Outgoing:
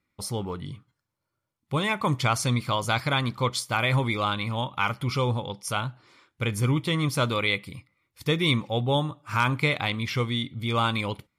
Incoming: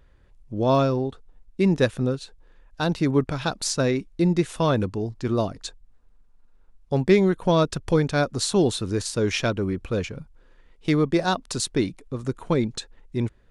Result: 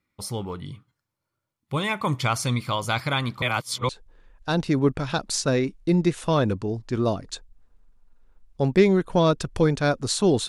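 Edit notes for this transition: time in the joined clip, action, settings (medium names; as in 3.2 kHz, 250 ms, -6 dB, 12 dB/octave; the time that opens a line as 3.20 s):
outgoing
3.42–3.89 s: reverse
3.89 s: go over to incoming from 2.21 s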